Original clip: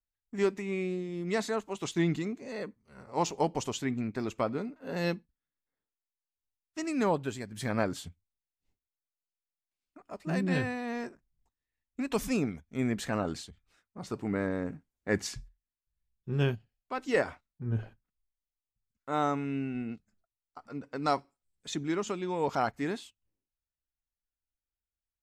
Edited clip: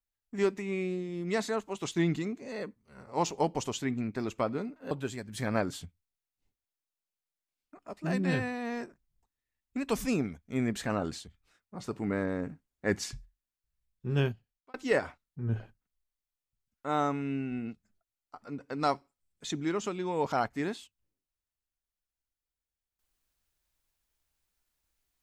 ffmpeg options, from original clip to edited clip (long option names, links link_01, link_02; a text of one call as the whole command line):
ffmpeg -i in.wav -filter_complex "[0:a]asplit=3[link_01][link_02][link_03];[link_01]atrim=end=4.912[link_04];[link_02]atrim=start=7.138:end=16.97,asetpts=PTS-STARTPTS,afade=type=out:start_time=9.372:duration=0.46[link_05];[link_03]atrim=start=16.97,asetpts=PTS-STARTPTS,afade=type=in:duration=0.004:curve=hsin[link_06];[link_05][link_06]concat=n=2:v=0:a=1[link_07];[link_04][link_07]acrossfade=duration=0.004:curve1=hsin:curve2=hsin" out.wav